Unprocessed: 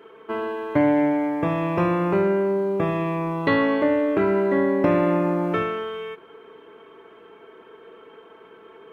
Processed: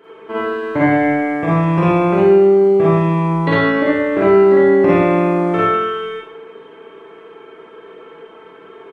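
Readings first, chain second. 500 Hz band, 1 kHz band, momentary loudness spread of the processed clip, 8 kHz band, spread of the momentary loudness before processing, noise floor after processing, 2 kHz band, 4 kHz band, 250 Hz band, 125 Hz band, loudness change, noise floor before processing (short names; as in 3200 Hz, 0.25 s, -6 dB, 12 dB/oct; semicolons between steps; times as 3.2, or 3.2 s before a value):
+9.0 dB, +8.0 dB, 11 LU, n/a, 10 LU, -41 dBFS, +8.0 dB, +7.0 dB, +6.5 dB, +10.0 dB, +8.0 dB, -49 dBFS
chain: downsampling 22050 Hz; Schroeder reverb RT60 0.59 s, DRR -7 dB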